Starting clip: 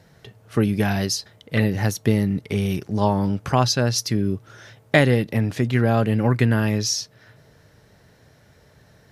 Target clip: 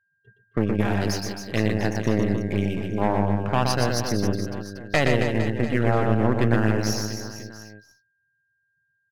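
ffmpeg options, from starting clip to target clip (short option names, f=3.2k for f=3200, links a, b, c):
-filter_complex "[0:a]aeval=exprs='0.794*(cos(1*acos(clip(val(0)/0.794,-1,1)))-cos(1*PI/2))+0.2*(cos(6*acos(clip(val(0)/0.794,-1,1)))-cos(6*PI/2))':c=same,asplit=2[a][b];[b]acompressor=threshold=-30dB:ratio=6,volume=-2dB[c];[a][c]amix=inputs=2:normalize=0,afftdn=nr=26:nf=-31,adynamicequalizer=threshold=0.0126:dfrequency=2800:dqfactor=1.6:tfrequency=2800:tqfactor=1.6:attack=5:release=100:ratio=0.375:range=2:mode=cutabove:tftype=bell,adynamicsmooth=sensitivity=7.5:basefreq=2.8k,asplit=2[d][e];[e]aecho=0:1:120|270|457.5|691.9|984.8:0.631|0.398|0.251|0.158|0.1[f];[d][f]amix=inputs=2:normalize=0,aeval=exprs='val(0)+0.00891*sin(2*PI*1600*n/s)':c=same,agate=range=-33dB:threshold=-31dB:ratio=3:detection=peak,lowshelf=f=120:g=-4,volume=-7.5dB"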